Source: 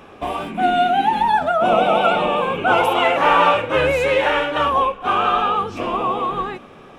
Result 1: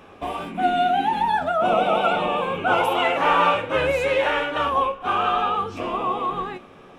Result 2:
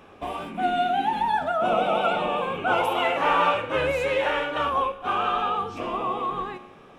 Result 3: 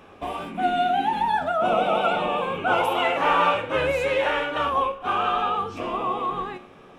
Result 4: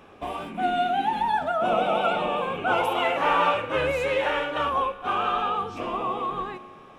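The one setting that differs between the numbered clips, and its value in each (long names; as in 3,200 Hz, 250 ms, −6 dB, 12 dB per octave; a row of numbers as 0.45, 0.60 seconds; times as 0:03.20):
tuned comb filter, decay: 0.17, 0.99, 0.42, 2.2 seconds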